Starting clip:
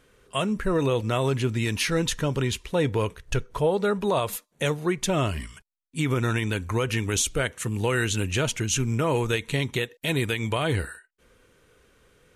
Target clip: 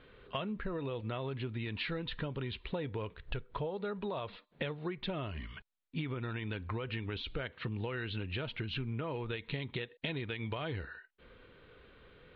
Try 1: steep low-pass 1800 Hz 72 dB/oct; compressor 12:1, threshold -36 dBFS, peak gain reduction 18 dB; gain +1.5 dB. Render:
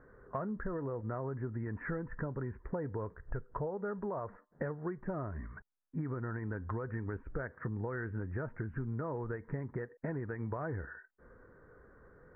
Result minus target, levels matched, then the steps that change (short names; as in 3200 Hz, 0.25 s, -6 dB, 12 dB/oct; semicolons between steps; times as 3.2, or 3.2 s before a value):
2000 Hz band -3.0 dB
change: steep low-pass 4200 Hz 72 dB/oct